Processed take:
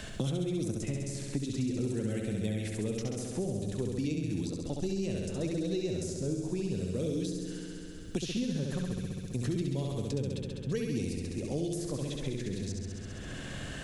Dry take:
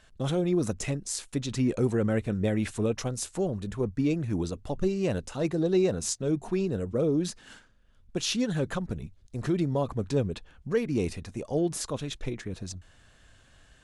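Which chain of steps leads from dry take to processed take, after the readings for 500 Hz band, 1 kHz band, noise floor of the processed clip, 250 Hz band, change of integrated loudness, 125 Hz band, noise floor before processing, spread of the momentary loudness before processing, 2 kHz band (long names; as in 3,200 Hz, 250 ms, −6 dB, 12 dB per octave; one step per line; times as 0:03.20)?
−7.0 dB, −10.0 dB, −42 dBFS, −4.0 dB, −5.0 dB, −2.5 dB, −59 dBFS, 10 LU, −5.5 dB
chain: parametric band 1,100 Hz −12 dB 2 octaves
on a send: flutter between parallel walls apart 11.4 metres, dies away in 1.2 s
on the sum: multiband upward and downward compressor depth 100%
level −6 dB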